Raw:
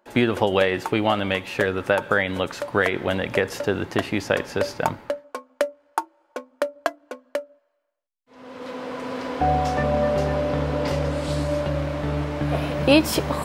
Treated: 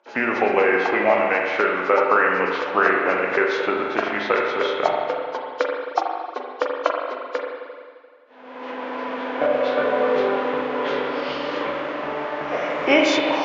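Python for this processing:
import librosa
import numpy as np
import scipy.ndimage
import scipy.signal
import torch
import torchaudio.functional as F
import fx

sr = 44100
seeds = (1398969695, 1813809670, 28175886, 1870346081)

y = fx.freq_compress(x, sr, knee_hz=2600.0, ratio=1.5)
y = fx.formant_shift(y, sr, semitones=-3)
y = fx.bandpass_edges(y, sr, low_hz=500.0, high_hz=5200.0)
y = fx.rev_spring(y, sr, rt60_s=1.9, pass_ms=(38, 43), chirp_ms=35, drr_db=0.0)
y = y * librosa.db_to_amplitude(4.0)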